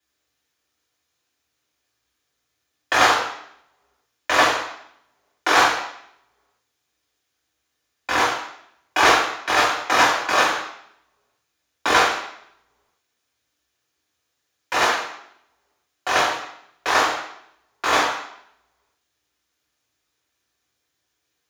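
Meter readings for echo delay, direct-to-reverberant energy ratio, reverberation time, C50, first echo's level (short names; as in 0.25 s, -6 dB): none, -5.0 dB, 0.70 s, 3.5 dB, none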